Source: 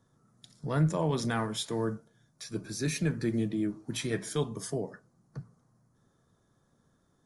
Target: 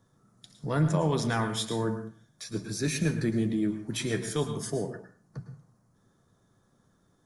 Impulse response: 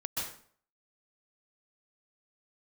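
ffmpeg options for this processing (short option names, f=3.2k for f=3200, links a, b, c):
-filter_complex "[0:a]asplit=2[a][b];[1:a]atrim=start_sample=2205,asetrate=57330,aresample=44100,adelay=10[c];[b][c]afir=irnorm=-1:irlink=0,volume=-9.5dB[d];[a][d]amix=inputs=2:normalize=0,volume=2dB"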